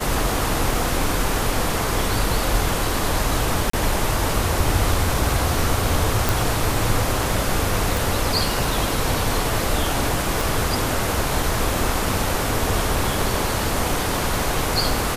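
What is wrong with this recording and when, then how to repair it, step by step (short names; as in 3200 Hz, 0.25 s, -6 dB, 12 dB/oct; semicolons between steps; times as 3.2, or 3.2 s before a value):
3.7–3.73 gap 34 ms
6.29 pop
7.97 pop
10.41 pop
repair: de-click; interpolate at 3.7, 34 ms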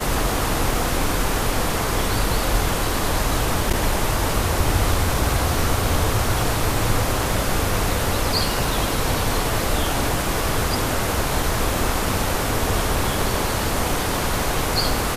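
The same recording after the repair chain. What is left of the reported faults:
none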